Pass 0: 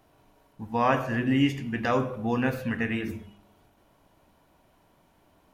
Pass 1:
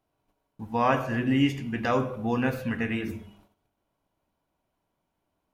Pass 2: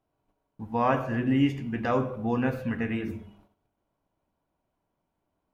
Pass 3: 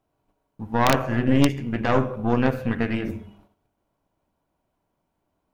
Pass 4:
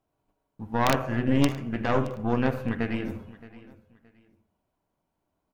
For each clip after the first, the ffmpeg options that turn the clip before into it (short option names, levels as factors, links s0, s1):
-af "bandreject=f=1800:w=19,agate=range=0.158:threshold=0.00141:ratio=16:detection=peak"
-af "highshelf=f=2400:g=-9"
-af "aeval=exprs='(mod(4.22*val(0)+1,2)-1)/4.22':c=same,aeval=exprs='0.237*(cos(1*acos(clip(val(0)/0.237,-1,1)))-cos(1*PI/2))+0.0531*(cos(4*acos(clip(val(0)/0.237,-1,1)))-cos(4*PI/2))':c=same,volume=1.58"
-af "aecho=1:1:621|1242:0.112|0.0303,volume=0.631"